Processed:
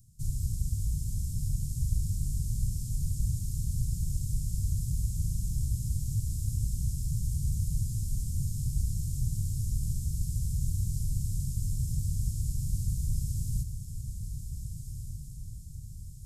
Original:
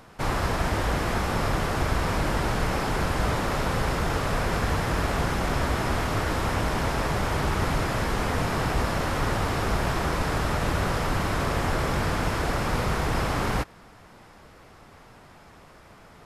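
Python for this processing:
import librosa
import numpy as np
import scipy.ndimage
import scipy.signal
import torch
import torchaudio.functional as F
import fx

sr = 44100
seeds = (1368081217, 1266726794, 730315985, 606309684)

y = scipy.signal.sosfilt(scipy.signal.ellip(3, 1.0, 70, [130.0, 7300.0], 'bandstop', fs=sr, output='sos'), x)
y = fx.peak_eq(y, sr, hz=4400.0, db=2.0, octaves=0.77)
y = fx.echo_diffused(y, sr, ms=1537, feedback_pct=52, wet_db=-8.0)
y = y * 10.0 ** (-1.0 / 20.0)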